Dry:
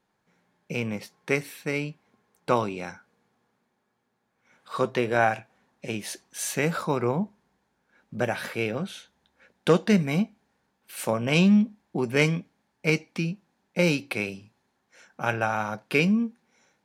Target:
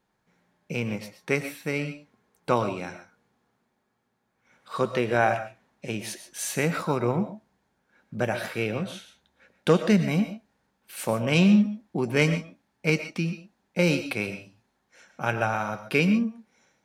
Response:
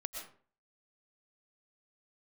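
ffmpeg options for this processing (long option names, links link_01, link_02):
-filter_complex "[0:a]asplit=2[link_01][link_02];[link_02]lowshelf=frequency=130:gain=8[link_03];[1:a]atrim=start_sample=2205,afade=type=out:start_time=0.2:duration=0.01,atrim=end_sample=9261[link_04];[link_03][link_04]afir=irnorm=-1:irlink=0,volume=1.5dB[link_05];[link_01][link_05]amix=inputs=2:normalize=0,volume=-6dB"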